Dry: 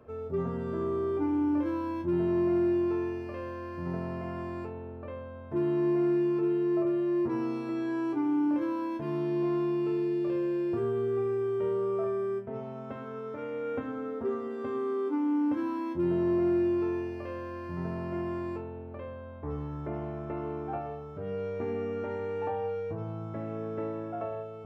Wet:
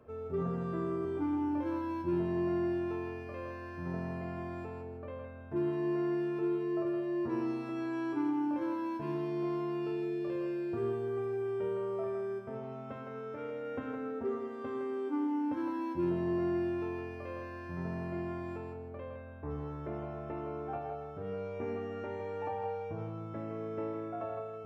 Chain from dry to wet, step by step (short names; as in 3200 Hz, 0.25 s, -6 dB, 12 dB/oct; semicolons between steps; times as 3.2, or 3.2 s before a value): 0.41–1.05 comb 5.9 ms, depth 55%; thinning echo 0.162 s, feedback 30%, high-pass 500 Hz, level -4.5 dB; gain -3.5 dB